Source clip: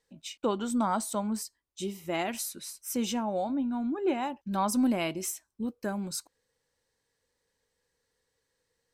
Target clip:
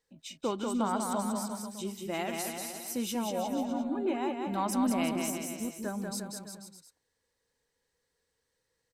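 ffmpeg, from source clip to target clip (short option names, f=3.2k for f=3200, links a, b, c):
-af "aecho=1:1:190|351.5|488.8|605.5|704.6:0.631|0.398|0.251|0.158|0.1,volume=-3.5dB"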